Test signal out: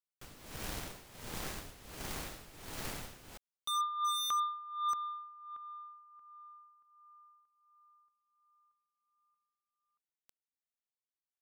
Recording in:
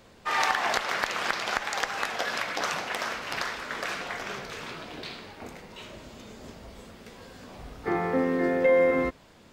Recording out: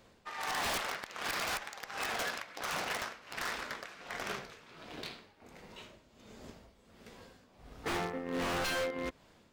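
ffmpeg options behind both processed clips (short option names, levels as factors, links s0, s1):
-af "tremolo=f=1.4:d=0.77,aeval=exprs='0.0422*(abs(mod(val(0)/0.0422+3,4)-2)-1)':c=same,aeval=exprs='0.0447*(cos(1*acos(clip(val(0)/0.0447,-1,1)))-cos(1*PI/2))+0.00794*(cos(3*acos(clip(val(0)/0.0447,-1,1)))-cos(3*PI/2))':c=same"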